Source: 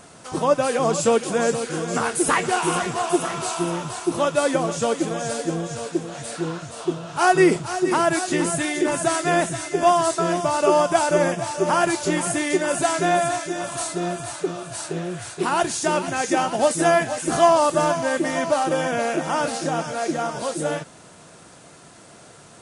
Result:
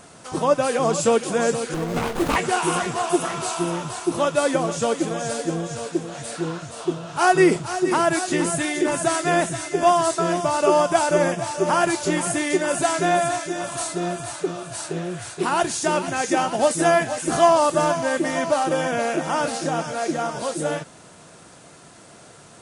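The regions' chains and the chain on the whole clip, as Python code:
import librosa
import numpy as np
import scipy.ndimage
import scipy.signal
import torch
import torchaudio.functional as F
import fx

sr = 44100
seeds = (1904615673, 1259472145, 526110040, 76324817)

y = fx.chain(x, sr, fx.doubler(ms=18.0, db=-6.0),
    fx.running_max(window=17), at=(1.74, 2.36))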